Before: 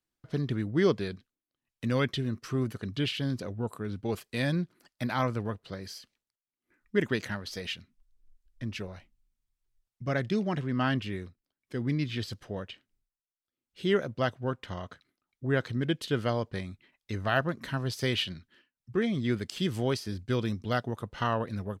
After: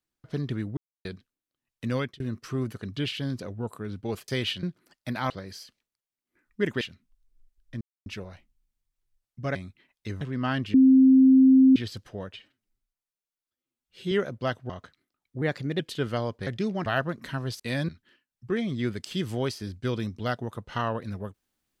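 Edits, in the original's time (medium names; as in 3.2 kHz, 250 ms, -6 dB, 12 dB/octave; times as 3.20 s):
0.77–1.05 s: mute
1.95–2.20 s: fade out
4.28–4.57 s: swap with 17.99–18.34 s
5.24–5.65 s: delete
7.16–7.69 s: delete
8.69 s: insert silence 0.25 s
10.18–10.57 s: swap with 16.59–17.25 s
11.10–12.12 s: bleep 263 Hz -12.5 dBFS
12.69–13.88 s: stretch 1.5×
14.46–14.77 s: delete
15.49–15.92 s: speed 113%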